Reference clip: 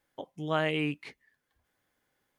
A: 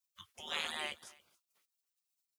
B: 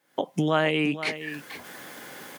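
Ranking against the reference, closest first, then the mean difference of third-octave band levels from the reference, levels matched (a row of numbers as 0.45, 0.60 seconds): B, A; 5.5, 15.0 decibels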